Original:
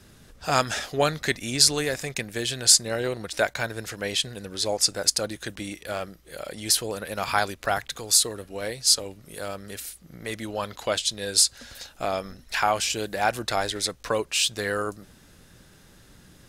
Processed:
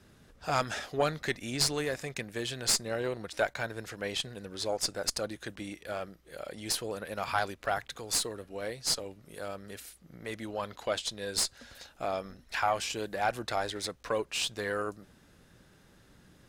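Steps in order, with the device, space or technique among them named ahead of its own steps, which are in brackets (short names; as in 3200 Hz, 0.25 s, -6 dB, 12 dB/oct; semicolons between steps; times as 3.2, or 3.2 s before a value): tube preamp driven hard (tube stage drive 8 dB, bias 0.55; low shelf 120 Hz -4 dB; high shelf 3400 Hz -7.5 dB); gain -2 dB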